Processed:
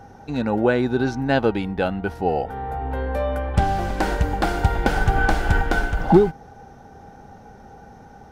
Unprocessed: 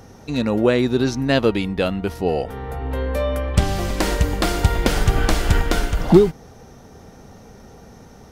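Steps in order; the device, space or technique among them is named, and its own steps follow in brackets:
inside a helmet (high-shelf EQ 3,200 Hz −9.5 dB; hollow resonant body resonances 810/1,500 Hz, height 14 dB, ringing for 45 ms)
level −2.5 dB

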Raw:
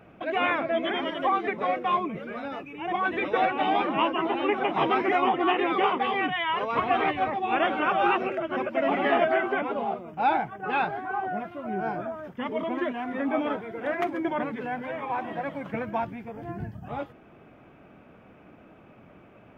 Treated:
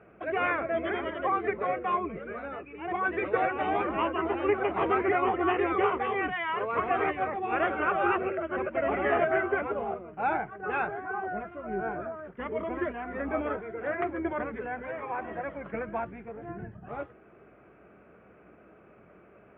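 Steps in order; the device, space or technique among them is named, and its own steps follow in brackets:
sub-octave bass pedal (sub-octave generator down 2 octaves, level −6 dB; loudspeaker in its box 85–2,400 Hz, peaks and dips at 99 Hz −5 dB, 150 Hz −5 dB, 260 Hz −7 dB, 410 Hz +5 dB, 870 Hz −5 dB, 1,400 Hz +3 dB)
level −2.5 dB

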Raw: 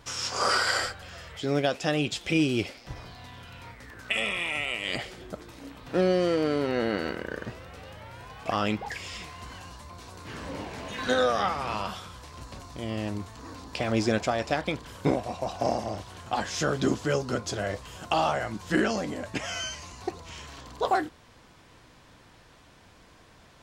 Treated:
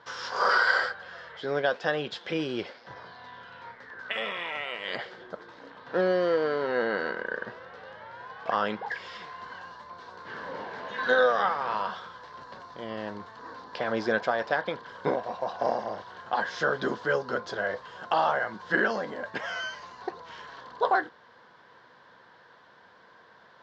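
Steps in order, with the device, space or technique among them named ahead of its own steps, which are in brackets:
kitchen radio (loudspeaker in its box 220–4,500 Hz, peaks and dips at 290 Hz −8 dB, 490 Hz +5 dB, 980 Hz +7 dB, 1,600 Hz +10 dB, 2,500 Hz −9 dB)
level −2 dB

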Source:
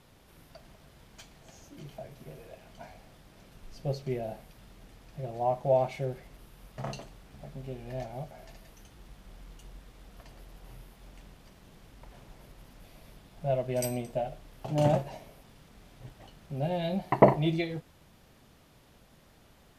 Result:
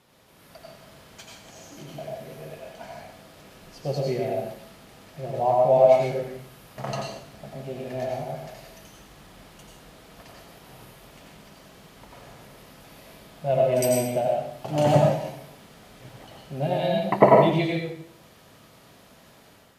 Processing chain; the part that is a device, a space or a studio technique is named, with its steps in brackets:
far laptop microphone (convolution reverb RT60 0.65 s, pre-delay 83 ms, DRR −1.5 dB; high-pass filter 200 Hz 6 dB per octave; automatic gain control gain up to 5.5 dB)

